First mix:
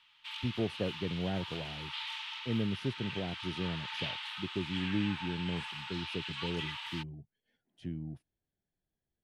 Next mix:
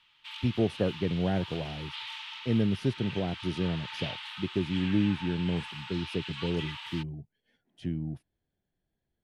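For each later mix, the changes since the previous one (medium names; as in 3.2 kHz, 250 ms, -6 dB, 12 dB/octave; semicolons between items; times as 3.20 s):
speech +6.5 dB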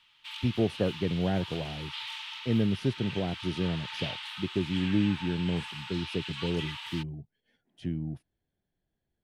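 background: add treble shelf 6.4 kHz +8 dB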